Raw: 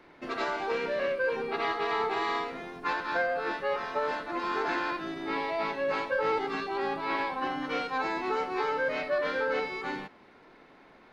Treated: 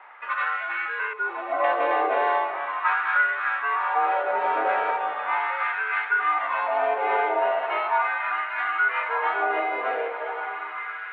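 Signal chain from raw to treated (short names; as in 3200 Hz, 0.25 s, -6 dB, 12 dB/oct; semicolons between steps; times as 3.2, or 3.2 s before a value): 1.13–1.64 spectral contrast raised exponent 2; in parallel at +0.5 dB: compressor, threshold -37 dBFS, peak gain reduction 12.5 dB; on the sum: mistuned SSB -120 Hz 480–3000 Hz; diffused feedback echo 1.072 s, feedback 46%, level -7 dB; LFO high-pass sine 0.38 Hz 530–1500 Hz; gain +1.5 dB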